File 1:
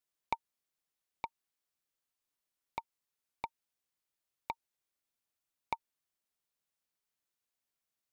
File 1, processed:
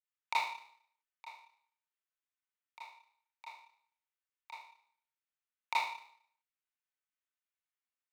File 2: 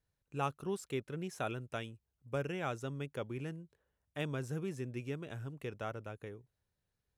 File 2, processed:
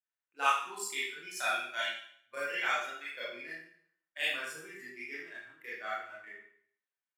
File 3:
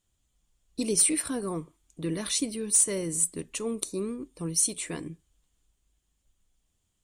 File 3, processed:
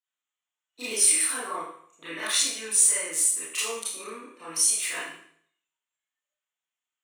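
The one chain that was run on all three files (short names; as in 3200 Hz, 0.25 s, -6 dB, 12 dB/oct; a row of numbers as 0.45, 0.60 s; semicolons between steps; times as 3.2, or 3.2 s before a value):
Wiener smoothing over 9 samples; spectral noise reduction 16 dB; HPF 1400 Hz 12 dB/oct; in parallel at -0.5 dB: compressor, threshold -38 dBFS; on the sum: limiter -20 dBFS; Schroeder reverb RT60 0.59 s, combs from 25 ms, DRR -10 dB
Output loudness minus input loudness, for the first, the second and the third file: +7.0, +6.0, +4.0 LU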